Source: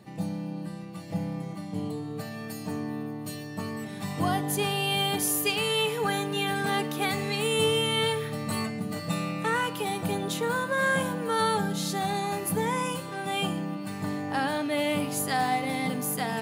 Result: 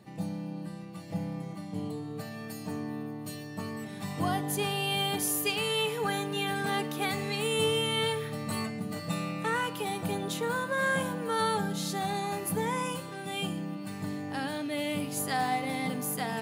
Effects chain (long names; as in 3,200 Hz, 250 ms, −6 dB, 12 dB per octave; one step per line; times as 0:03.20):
0:13.01–0:15.17: dynamic equaliser 990 Hz, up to −6 dB, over −41 dBFS, Q 0.77
level −3 dB